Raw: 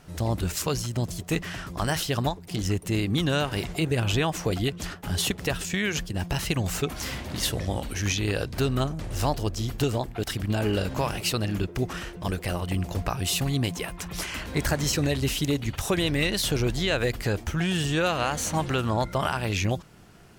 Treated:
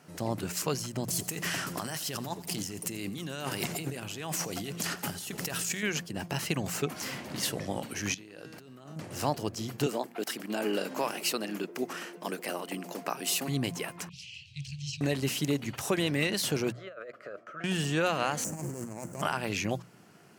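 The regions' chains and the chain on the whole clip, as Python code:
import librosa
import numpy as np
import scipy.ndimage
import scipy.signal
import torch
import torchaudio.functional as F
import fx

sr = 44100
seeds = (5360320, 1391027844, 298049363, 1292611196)

y = fx.chain(x, sr, fx.high_shelf(hz=4500.0, db=10.5),
    fx.over_compress(threshold_db=-31.0, ratio=-1.0),
    fx.echo_feedback(ms=86, feedback_pct=59, wet_db=-18), at=(1.08, 5.83))
y = fx.chain(y, sr, fx.peak_eq(hz=69.0, db=-8.0, octaves=1.4),
    fx.comb_fb(f0_hz=160.0, decay_s=1.7, harmonics='all', damping=0.0, mix_pct=70),
    fx.over_compress(threshold_db=-44.0, ratio=-1.0), at=(8.14, 8.96))
y = fx.chain(y, sr, fx.highpass(hz=220.0, slope=24),
    fx.high_shelf(hz=11000.0, db=5.0), at=(9.86, 13.48))
y = fx.chain(y, sr, fx.cheby1_bandstop(low_hz=140.0, high_hz=2600.0, order=5),
    fx.air_absorb(metres=140.0),
    fx.doppler_dist(depth_ms=0.1), at=(14.09, 15.01))
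y = fx.chain(y, sr, fx.double_bandpass(hz=870.0, octaves=1.1),
    fx.over_compress(threshold_db=-39.0, ratio=-1.0), at=(16.72, 17.64))
y = fx.chain(y, sr, fx.median_filter(points=41),
    fx.high_shelf_res(hz=5300.0, db=13.0, q=3.0),
    fx.over_compress(threshold_db=-31.0, ratio=-0.5), at=(18.44, 19.22))
y = scipy.signal.sosfilt(scipy.signal.butter(4, 130.0, 'highpass', fs=sr, output='sos'), y)
y = fx.peak_eq(y, sr, hz=3600.0, db=-5.5, octaves=0.27)
y = fx.hum_notches(y, sr, base_hz=60, count=3)
y = F.gain(torch.from_numpy(y), -3.0).numpy()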